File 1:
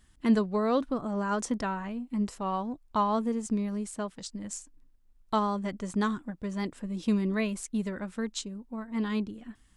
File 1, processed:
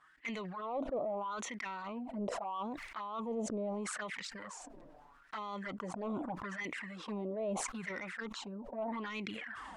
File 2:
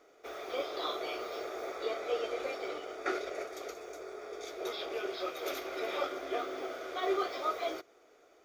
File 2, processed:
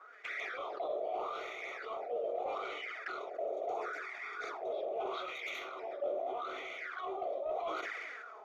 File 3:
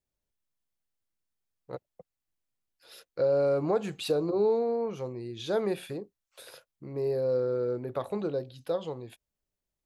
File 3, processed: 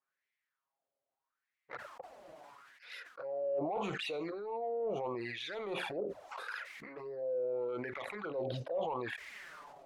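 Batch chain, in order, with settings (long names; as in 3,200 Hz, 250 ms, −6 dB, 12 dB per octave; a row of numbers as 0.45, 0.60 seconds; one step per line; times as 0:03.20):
in parallel at +2 dB: brickwall limiter −23 dBFS
on the sum: LFO wah 0.78 Hz 580–2,100 Hz, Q 6
reversed playback
downward compressor 8 to 1, threshold −46 dBFS
reversed playback
soft clipping −39.5 dBFS
flanger swept by the level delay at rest 7.4 ms, full sweep at −48 dBFS
level that may fall only so fast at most 22 dB per second
level +13.5 dB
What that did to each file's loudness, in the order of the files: −9.0, −2.0, −9.0 LU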